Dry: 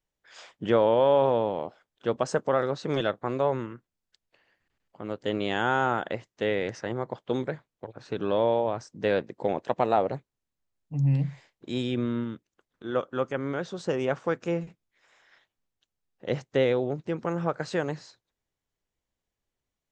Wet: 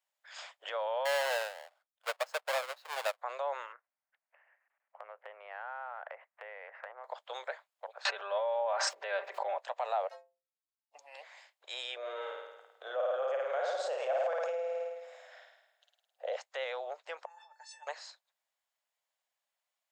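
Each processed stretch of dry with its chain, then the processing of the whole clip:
0:01.05–0:03.19: each half-wave held at its own peak + high-shelf EQ 5,500 Hz −9.5 dB + expander for the loud parts 2.5 to 1, over −28 dBFS
0:03.72–0:07.04: Butterworth low-pass 2,300 Hz + downward compressor 12 to 1, threshold −36 dBFS
0:08.05–0:09.58: bass and treble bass +2 dB, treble −13 dB + comb filter 5.1 ms, depth 55% + envelope flattener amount 100%
0:10.09–0:10.95: running median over 15 samples + parametric band 5,800 Hz +9 dB 2 octaves + stiff-string resonator 79 Hz, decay 0.65 s, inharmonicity 0.03
0:11.96–0:16.36: flat-topped bell 540 Hz +12.5 dB 1.2 octaves + flutter between parallel walls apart 9.1 metres, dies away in 1 s
0:17.25–0:17.87: high-shelf EQ 5,400 Hz +11 dB + compressor whose output falls as the input rises −30 dBFS, ratio −0.5 + tuned comb filter 880 Hz, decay 0.16 s, mix 100%
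whole clip: brickwall limiter −21.5 dBFS; Butterworth high-pass 580 Hz 48 dB per octave; notch filter 5,900 Hz, Q 12; level +1.5 dB

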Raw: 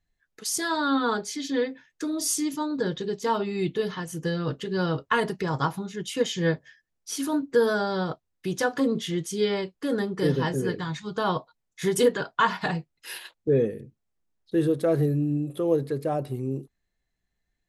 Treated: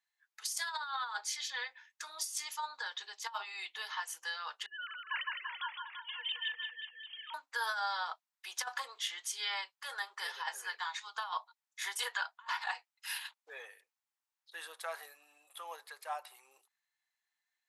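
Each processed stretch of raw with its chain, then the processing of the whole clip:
0:04.66–0:07.34: three sine waves on the formant tracks + resonant band-pass 3,000 Hz, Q 1.4 + reverse bouncing-ball delay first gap 160 ms, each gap 1.1×, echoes 5
whole clip: elliptic high-pass filter 850 Hz, stop band 80 dB; compressor whose output falls as the input rises −32 dBFS, ratio −0.5; level −3.5 dB

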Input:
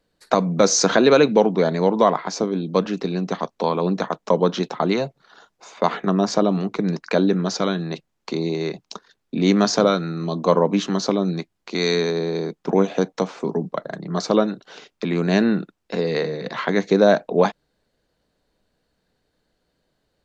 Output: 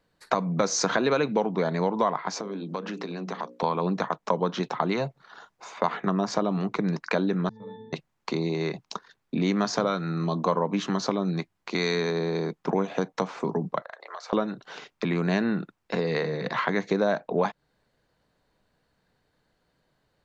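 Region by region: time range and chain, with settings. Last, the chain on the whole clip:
0:02.40–0:03.63: mains-hum notches 60/120/180/240/300/360/420/480/540 Hz + downward compressor 5 to 1, threshold −28 dBFS + high-pass filter 180 Hz 24 dB per octave
0:07.49–0:07.93: low-shelf EQ 430 Hz +10.5 dB + resonances in every octave A, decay 0.75 s
0:13.82–0:14.33: elliptic high-pass filter 510 Hz, stop band 70 dB + parametric band 2,100 Hz +4.5 dB 2.1 octaves + downward compressor 16 to 1, threshold −36 dBFS
whole clip: graphic EQ with 10 bands 125 Hz +6 dB, 1,000 Hz +6 dB, 2,000 Hz +4 dB; downward compressor 2.5 to 1, threshold −21 dBFS; level −3 dB

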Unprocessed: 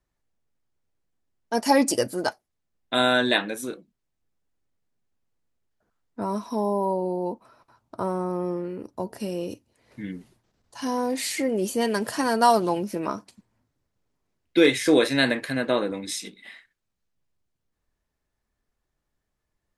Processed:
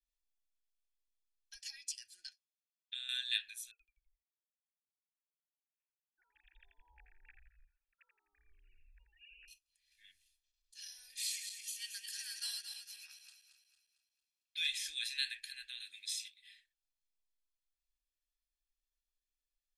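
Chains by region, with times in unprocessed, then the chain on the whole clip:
0:01.54–0:03.09: band-pass filter 140–6,500 Hz + downward compressor, threshold −24 dBFS
0:03.71–0:09.48: three sine waves on the formant tracks + echo with shifted repeats 84 ms, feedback 52%, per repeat −110 Hz, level −5 dB
0:11.27–0:14.68: feedback delay that plays each chunk backwards 113 ms, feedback 66%, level −6 dB + high-pass filter 410 Hz 6 dB per octave
0:15.80–0:16.39: high-pass filter 130 Hz + multiband upward and downward compressor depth 70%
whole clip: inverse Chebyshev band-stop filter 130–1,100 Hz, stop band 60 dB; three-way crossover with the lows and the highs turned down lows −20 dB, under 260 Hz, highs −16 dB, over 2,100 Hz; comb filter 1.2 ms, depth 61%; level +5.5 dB

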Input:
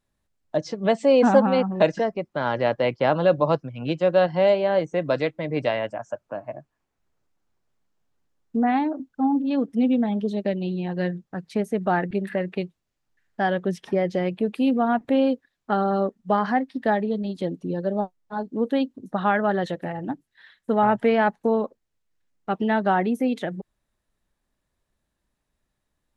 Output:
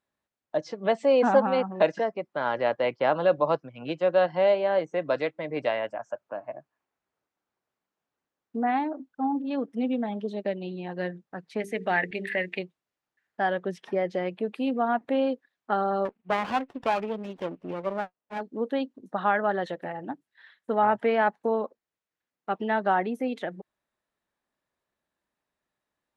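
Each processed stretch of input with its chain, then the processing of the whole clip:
0:11.60–0:12.59: high shelf with overshoot 1,600 Hz +7 dB, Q 3 + mains-hum notches 50/100/150/200/250/300/350/400/450 Hz
0:16.05–0:18.41: low-pass with resonance 2,600 Hz + windowed peak hold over 17 samples
whole clip: high-pass filter 540 Hz 6 dB per octave; high-shelf EQ 3,900 Hz −11 dB

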